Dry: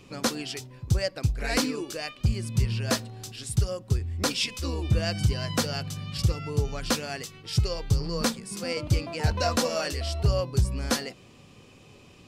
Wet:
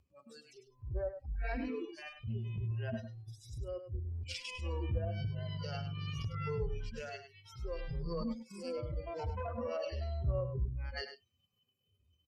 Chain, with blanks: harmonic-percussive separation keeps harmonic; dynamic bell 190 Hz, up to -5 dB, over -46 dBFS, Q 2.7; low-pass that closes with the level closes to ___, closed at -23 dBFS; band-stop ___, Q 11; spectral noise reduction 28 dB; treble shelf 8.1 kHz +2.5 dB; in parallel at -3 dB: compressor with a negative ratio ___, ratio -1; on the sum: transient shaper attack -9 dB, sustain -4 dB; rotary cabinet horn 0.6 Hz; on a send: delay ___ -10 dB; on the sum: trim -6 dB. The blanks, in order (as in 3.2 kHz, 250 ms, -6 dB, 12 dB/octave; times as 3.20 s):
1.2 kHz, 3.6 kHz, -36 dBFS, 102 ms